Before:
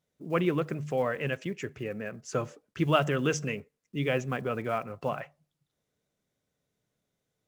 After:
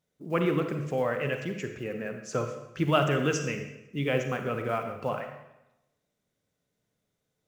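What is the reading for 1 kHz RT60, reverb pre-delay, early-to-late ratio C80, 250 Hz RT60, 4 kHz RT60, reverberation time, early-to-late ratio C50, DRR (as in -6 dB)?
0.95 s, 33 ms, 8.5 dB, 1.0 s, 0.80 s, 0.95 s, 6.5 dB, 5.5 dB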